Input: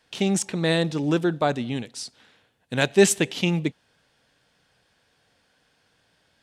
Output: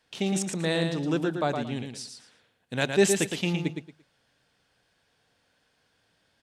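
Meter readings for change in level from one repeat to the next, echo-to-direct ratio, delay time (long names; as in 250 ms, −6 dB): −13.0 dB, −6.0 dB, 114 ms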